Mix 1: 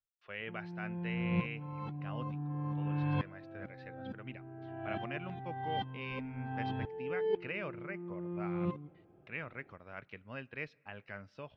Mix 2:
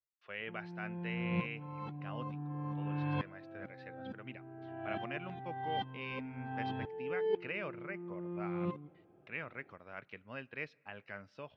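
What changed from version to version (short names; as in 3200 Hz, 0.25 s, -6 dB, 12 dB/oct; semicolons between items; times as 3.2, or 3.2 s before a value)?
master: add low shelf 94 Hz -11.5 dB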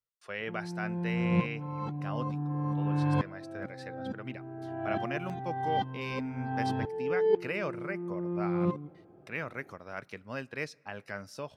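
background: add air absorption 180 m; master: remove ladder low-pass 3500 Hz, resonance 40%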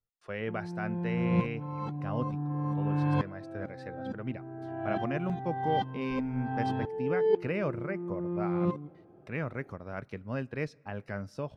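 speech: add tilt -3 dB/oct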